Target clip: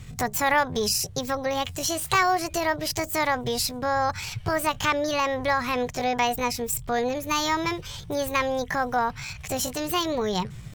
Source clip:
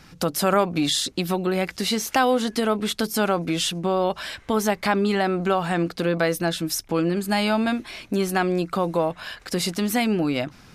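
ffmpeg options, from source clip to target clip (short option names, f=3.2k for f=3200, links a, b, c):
-af "asetrate=64194,aresample=44100,atempo=0.686977,lowshelf=f=190:t=q:w=3:g=13,volume=-1dB"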